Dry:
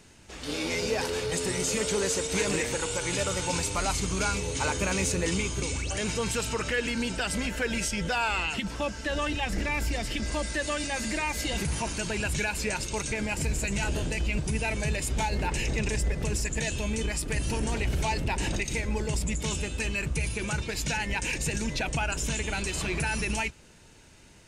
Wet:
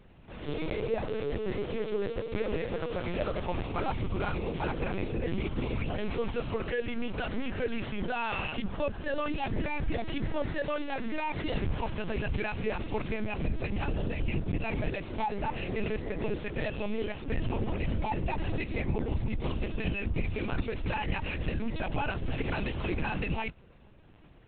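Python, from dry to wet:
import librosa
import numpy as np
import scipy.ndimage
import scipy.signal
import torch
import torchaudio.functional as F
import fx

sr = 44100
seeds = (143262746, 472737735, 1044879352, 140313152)

y = scipy.ndimage.median_filter(x, 9, mode='constant')
y = fx.highpass(y, sr, hz=160.0, slope=12, at=(14.88, 17.26), fade=0.02)
y = fx.peak_eq(y, sr, hz=1800.0, db=-5.5, octaves=1.6)
y = fx.rider(y, sr, range_db=10, speed_s=0.5)
y = fx.lpc_vocoder(y, sr, seeds[0], excitation='pitch_kept', order=10)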